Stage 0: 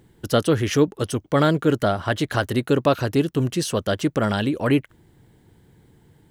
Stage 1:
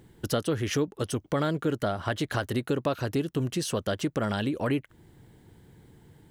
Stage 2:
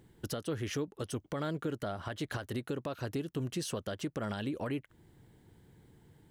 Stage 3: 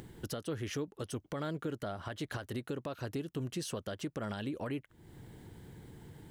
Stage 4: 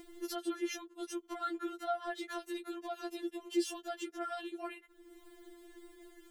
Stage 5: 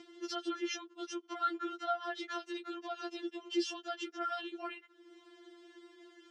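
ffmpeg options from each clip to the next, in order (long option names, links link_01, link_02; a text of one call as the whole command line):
ffmpeg -i in.wav -af "acompressor=threshold=-28dB:ratio=2.5" out.wav
ffmpeg -i in.wav -af "alimiter=limit=-20dB:level=0:latency=1:release=197,volume=-6dB" out.wav
ffmpeg -i in.wav -af "acompressor=mode=upward:threshold=-38dB:ratio=2.5,volume=-2dB" out.wav
ffmpeg -i in.wav -af "afftfilt=real='re*4*eq(mod(b,16),0)':imag='im*4*eq(mod(b,16),0)':win_size=2048:overlap=0.75,volume=2.5dB" out.wav
ffmpeg -i in.wav -af "highpass=160,equalizer=frequency=170:width_type=q:width=4:gain=-8,equalizer=frequency=520:width_type=q:width=4:gain=-8,equalizer=frequency=1300:width_type=q:width=4:gain=6,equalizer=frequency=3000:width_type=q:width=4:gain=6,equalizer=frequency=5400:width_type=q:width=4:gain=6,lowpass=frequency=6200:width=0.5412,lowpass=frequency=6200:width=1.3066" out.wav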